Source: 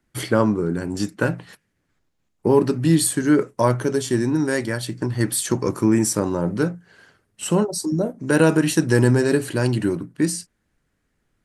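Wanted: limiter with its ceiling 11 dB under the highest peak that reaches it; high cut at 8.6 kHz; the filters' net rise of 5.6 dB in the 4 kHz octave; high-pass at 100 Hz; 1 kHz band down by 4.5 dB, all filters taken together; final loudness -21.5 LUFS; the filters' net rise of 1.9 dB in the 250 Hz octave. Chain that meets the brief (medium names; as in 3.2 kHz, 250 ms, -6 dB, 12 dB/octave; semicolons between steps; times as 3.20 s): high-pass 100 Hz; low-pass 8.6 kHz; peaking EQ 250 Hz +3 dB; peaking EQ 1 kHz -6 dB; peaking EQ 4 kHz +7.5 dB; trim +3.5 dB; peak limiter -11.5 dBFS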